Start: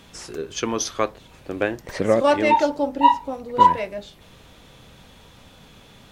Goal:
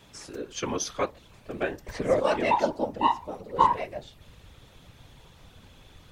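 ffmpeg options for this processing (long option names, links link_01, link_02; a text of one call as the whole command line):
ffmpeg -i in.wav -af "asubboost=boost=4.5:cutoff=67,afftfilt=real='hypot(re,im)*cos(2*PI*random(0))':imag='hypot(re,im)*sin(2*PI*random(1))':win_size=512:overlap=0.75" out.wav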